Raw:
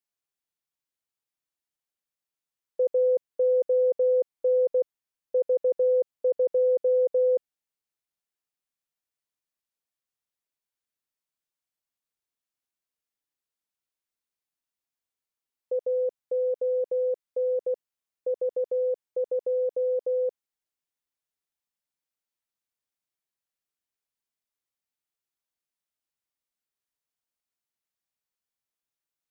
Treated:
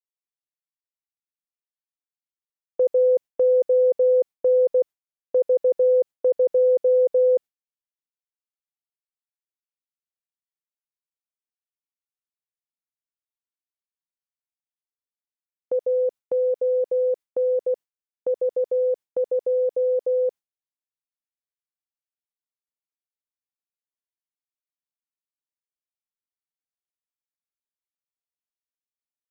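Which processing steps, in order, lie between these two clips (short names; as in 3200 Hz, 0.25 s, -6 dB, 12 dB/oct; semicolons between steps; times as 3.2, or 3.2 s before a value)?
gate with hold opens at -29 dBFS; gain +4.5 dB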